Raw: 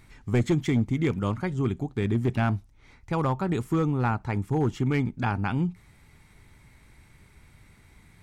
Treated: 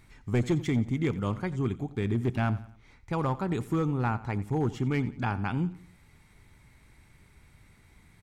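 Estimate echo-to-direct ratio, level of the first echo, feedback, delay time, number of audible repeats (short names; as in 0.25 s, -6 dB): -16.5 dB, -17.5 dB, 42%, 89 ms, 3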